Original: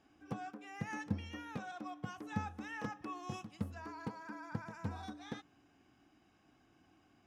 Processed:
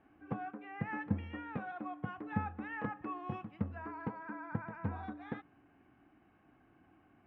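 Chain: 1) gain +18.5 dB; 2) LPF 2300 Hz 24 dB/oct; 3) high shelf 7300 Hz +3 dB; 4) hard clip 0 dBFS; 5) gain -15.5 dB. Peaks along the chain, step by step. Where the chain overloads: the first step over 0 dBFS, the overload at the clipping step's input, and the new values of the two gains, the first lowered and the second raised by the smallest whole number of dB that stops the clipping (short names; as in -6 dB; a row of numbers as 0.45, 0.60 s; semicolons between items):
-4.5, -4.5, -4.5, -4.5, -20.0 dBFS; no overload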